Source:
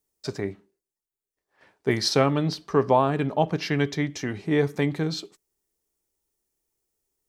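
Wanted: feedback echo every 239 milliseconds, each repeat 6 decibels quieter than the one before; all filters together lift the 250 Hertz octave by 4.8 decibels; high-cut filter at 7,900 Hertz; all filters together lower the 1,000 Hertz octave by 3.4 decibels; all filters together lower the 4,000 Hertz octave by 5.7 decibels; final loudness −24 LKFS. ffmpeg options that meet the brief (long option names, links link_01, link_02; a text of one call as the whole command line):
ffmpeg -i in.wav -af "lowpass=7900,equalizer=frequency=250:width_type=o:gain=6.5,equalizer=frequency=1000:width_type=o:gain=-4.5,equalizer=frequency=4000:width_type=o:gain=-6.5,aecho=1:1:239|478|717|956|1195|1434:0.501|0.251|0.125|0.0626|0.0313|0.0157,volume=-1.5dB" out.wav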